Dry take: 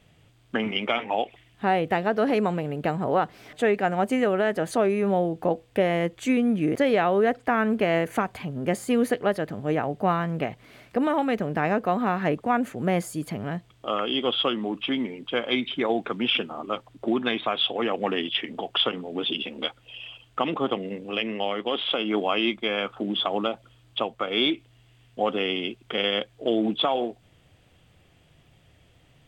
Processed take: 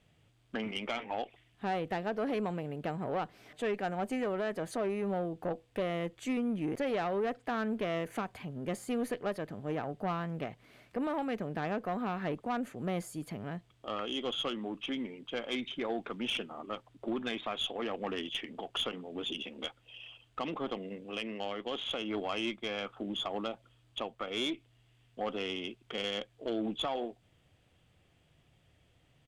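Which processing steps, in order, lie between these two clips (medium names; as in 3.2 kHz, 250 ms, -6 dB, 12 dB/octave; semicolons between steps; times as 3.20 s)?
resampled via 32 kHz; valve stage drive 17 dB, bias 0.25; trim -8.5 dB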